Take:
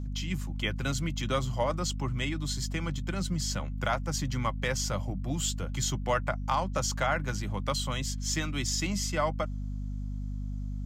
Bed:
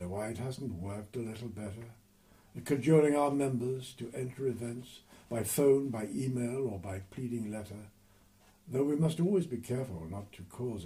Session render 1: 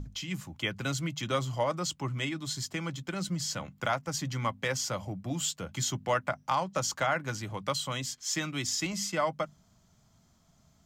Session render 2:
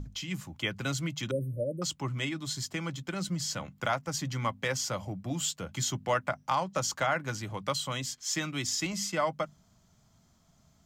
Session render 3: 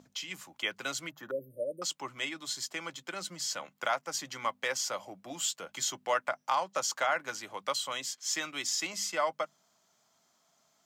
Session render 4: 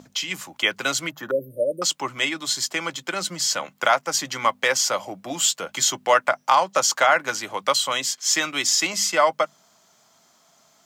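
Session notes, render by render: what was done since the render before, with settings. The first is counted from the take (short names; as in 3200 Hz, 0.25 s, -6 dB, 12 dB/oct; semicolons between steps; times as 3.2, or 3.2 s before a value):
notches 50/100/150/200/250 Hz
1.31–1.82 brick-wall FIR band-stop 610–8600 Hz
HPF 480 Hz 12 dB/oct; 1.1–1.5 spectral gain 1900–12000 Hz -19 dB
gain +12 dB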